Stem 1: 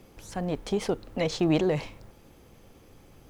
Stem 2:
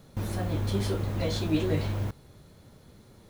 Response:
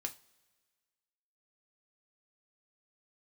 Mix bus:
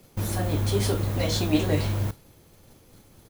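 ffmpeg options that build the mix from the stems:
-filter_complex "[0:a]volume=-3.5dB,asplit=2[link_01][link_02];[1:a]adelay=0.3,volume=0.5dB,asplit=2[link_03][link_04];[link_04]volume=-9dB[link_05];[link_02]apad=whole_len=145236[link_06];[link_03][link_06]sidechaingate=range=-33dB:threshold=-54dB:ratio=16:detection=peak[link_07];[2:a]atrim=start_sample=2205[link_08];[link_05][link_08]afir=irnorm=-1:irlink=0[link_09];[link_01][link_07][link_09]amix=inputs=3:normalize=0,highshelf=frequency=6300:gain=10.5"

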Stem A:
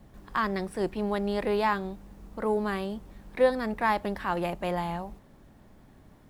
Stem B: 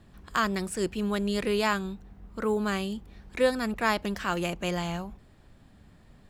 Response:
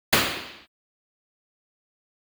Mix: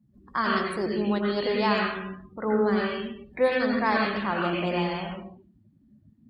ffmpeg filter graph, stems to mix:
-filter_complex "[0:a]volume=-2dB[link_01];[1:a]acrossover=split=6400[link_02][link_03];[link_03]acompressor=threshold=-55dB:ratio=4:attack=1:release=60[link_04];[link_02][link_04]amix=inputs=2:normalize=0,flanger=delay=15.5:depth=3.4:speed=0.6,aeval=exprs='clip(val(0),-1,0.119)':channel_layout=same,volume=-8.5dB,asplit=2[link_05][link_06];[link_06]volume=-13dB[link_07];[2:a]atrim=start_sample=2205[link_08];[link_07][link_08]afir=irnorm=-1:irlink=0[link_09];[link_01][link_05][link_09]amix=inputs=3:normalize=0,highpass=frequency=120:poles=1,afftdn=noise_reduction=29:noise_floor=-45,highshelf=frequency=3100:gain=7.5"

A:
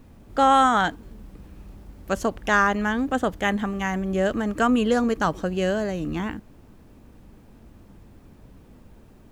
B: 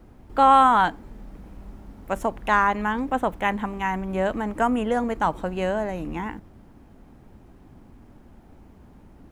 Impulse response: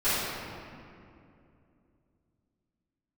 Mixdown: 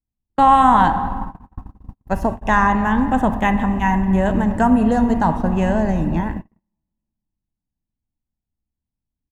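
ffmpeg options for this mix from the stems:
-filter_complex "[0:a]lowshelf=frequency=200:gain=5,volume=-2dB[link_01];[1:a]lowshelf=frequency=330:gain=12,aecho=1:1:1.1:0.56,volume=-2dB,asplit=3[link_02][link_03][link_04];[link_03]volume=-19dB[link_05];[link_04]apad=whole_len=410777[link_06];[link_01][link_06]sidechaincompress=threshold=-24dB:ratio=8:attack=47:release=113[link_07];[2:a]atrim=start_sample=2205[link_08];[link_05][link_08]afir=irnorm=-1:irlink=0[link_09];[link_07][link_02][link_09]amix=inputs=3:normalize=0,agate=range=-49dB:threshold=-21dB:ratio=16:detection=peak"

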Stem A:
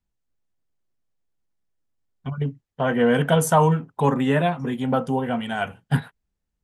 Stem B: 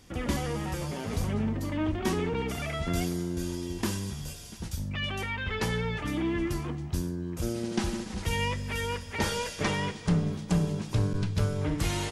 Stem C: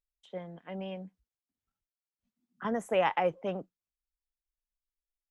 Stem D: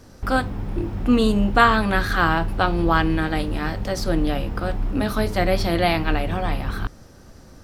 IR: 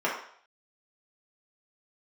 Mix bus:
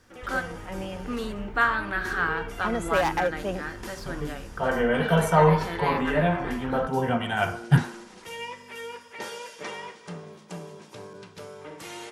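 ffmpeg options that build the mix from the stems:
-filter_complex "[0:a]asubboost=boost=4:cutoff=140,adelay=1800,volume=-1.5dB,asplit=2[link_01][link_02];[link_02]volume=-13.5dB[link_03];[1:a]highpass=270,volume=-9dB,asplit=2[link_04][link_05];[link_05]volume=-14dB[link_06];[2:a]asoftclip=type=hard:threshold=-22.5dB,highshelf=frequency=4900:gain=7,volume=3dB[link_07];[3:a]equalizer=frequency=1600:width=1.5:gain=10.5,volume=-15dB,asplit=3[link_08][link_09][link_10];[link_09]volume=-21.5dB[link_11];[link_10]apad=whole_len=371788[link_12];[link_01][link_12]sidechaincompress=threshold=-45dB:ratio=8:attack=16:release=226[link_13];[4:a]atrim=start_sample=2205[link_14];[link_03][link_06][link_11]amix=inputs=3:normalize=0[link_15];[link_15][link_14]afir=irnorm=-1:irlink=0[link_16];[link_13][link_04][link_07][link_08][link_16]amix=inputs=5:normalize=0"

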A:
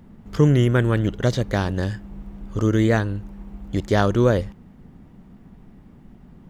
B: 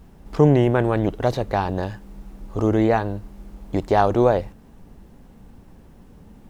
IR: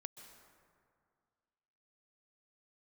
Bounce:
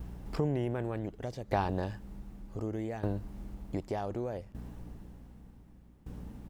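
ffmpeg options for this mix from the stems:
-filter_complex "[0:a]acompressor=threshold=-34dB:ratio=1.5,highshelf=frequency=5500:gain=11,volume=-18dB,asplit=2[link_01][link_02];[link_02]volume=-11dB[link_03];[1:a]alimiter=limit=-10dB:level=0:latency=1,aeval=exprs='val(0)+0.00708*(sin(2*PI*60*n/s)+sin(2*PI*2*60*n/s)/2+sin(2*PI*3*60*n/s)/3+sin(2*PI*4*60*n/s)/4+sin(2*PI*5*60*n/s)/5)':channel_layout=same,aeval=exprs='val(0)*pow(10,-21*if(lt(mod(0.66*n/s,1),2*abs(0.66)/1000),1-mod(0.66*n/s,1)/(2*abs(0.66)/1000),(mod(0.66*n/s,1)-2*abs(0.66)/1000)/(1-2*abs(0.66)/1000))/20)':channel_layout=same,adelay=0.8,volume=1.5dB[link_04];[2:a]atrim=start_sample=2205[link_05];[link_03][link_05]afir=irnorm=-1:irlink=0[link_06];[link_01][link_04][link_06]amix=inputs=3:normalize=0,acompressor=threshold=-39dB:ratio=1.5"

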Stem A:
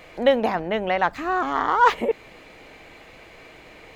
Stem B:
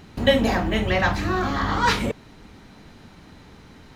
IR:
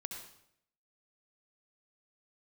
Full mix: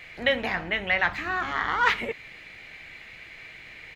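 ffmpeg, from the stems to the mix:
-filter_complex "[0:a]equalizer=frequency=125:width_type=o:width=1:gain=5,equalizer=frequency=250:width_type=o:width=1:gain=-6,equalizer=frequency=500:width_type=o:width=1:gain=-5,equalizer=frequency=1000:width_type=o:width=1:gain=-6,equalizer=frequency=2000:width_type=o:width=1:gain=12,equalizer=frequency=4000:width_type=o:width=1:gain=4,volume=-5dB[link_01];[1:a]acrossover=split=2900[link_02][link_03];[link_03]acompressor=threshold=-40dB:ratio=4:attack=1:release=60[link_04];[link_02][link_04]amix=inputs=2:normalize=0,equalizer=frequency=2100:width_type=o:width=2.5:gain=12,adelay=9.1,volume=-19.5dB[link_05];[link_01][link_05]amix=inputs=2:normalize=0"

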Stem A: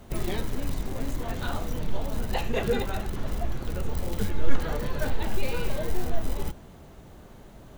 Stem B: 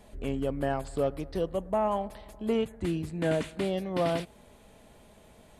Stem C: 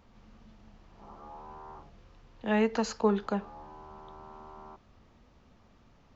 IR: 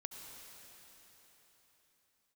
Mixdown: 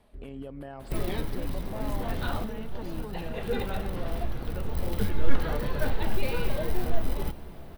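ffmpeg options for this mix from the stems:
-filter_complex "[0:a]adelay=800,volume=-1.5dB,asplit=2[link_01][link_02];[link_02]volume=-7.5dB[link_03];[1:a]agate=range=-10dB:threshold=-45dB:ratio=16:detection=peak,alimiter=level_in=2.5dB:limit=-24dB:level=0:latency=1:release=70,volume=-2.5dB,volume=2dB[link_04];[2:a]volume=-8.5dB,asplit=2[link_05][link_06];[link_06]apad=whole_len=378323[link_07];[link_01][link_07]sidechaincompress=threshold=-59dB:ratio=3:attack=43:release=146[link_08];[link_04][link_05]amix=inputs=2:normalize=0,tremolo=f=2.4:d=0.36,alimiter=level_in=7.5dB:limit=-24dB:level=0:latency=1:release=349,volume=-7.5dB,volume=0dB[link_09];[3:a]atrim=start_sample=2205[link_10];[link_03][link_10]afir=irnorm=-1:irlink=0[link_11];[link_08][link_09][link_11]amix=inputs=3:normalize=0,equalizer=frequency=6900:width_type=o:width=0.43:gain=-12"

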